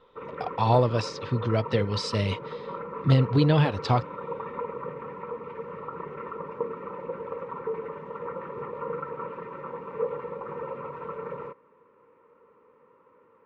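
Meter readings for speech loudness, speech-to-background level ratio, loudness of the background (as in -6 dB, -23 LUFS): -25.0 LUFS, 11.0 dB, -36.0 LUFS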